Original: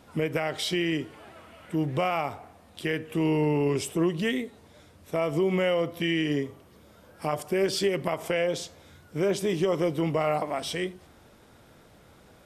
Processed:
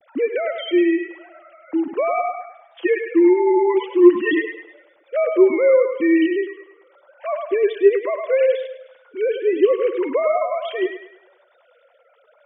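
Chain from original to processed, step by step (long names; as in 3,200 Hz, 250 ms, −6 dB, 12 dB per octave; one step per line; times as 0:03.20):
three sine waves on the formant tracks
0:02.37–0:04.42: comb filter 6 ms, depth 98%
delay with a band-pass on its return 103 ms, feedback 42%, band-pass 1,200 Hz, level −3.5 dB
level +8 dB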